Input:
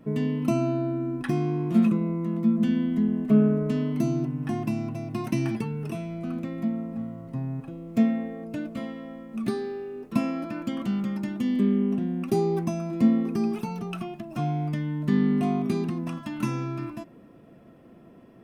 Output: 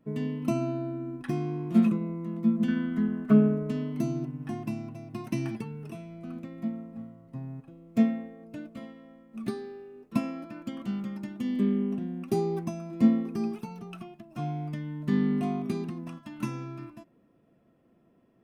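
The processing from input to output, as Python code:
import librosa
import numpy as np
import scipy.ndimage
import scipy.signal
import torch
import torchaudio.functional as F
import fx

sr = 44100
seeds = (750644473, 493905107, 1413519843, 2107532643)

y = fx.peak_eq(x, sr, hz=1400.0, db=14.5, octaves=0.62, at=(2.68, 3.33))
y = fx.upward_expand(y, sr, threshold_db=-42.0, expansion=1.5)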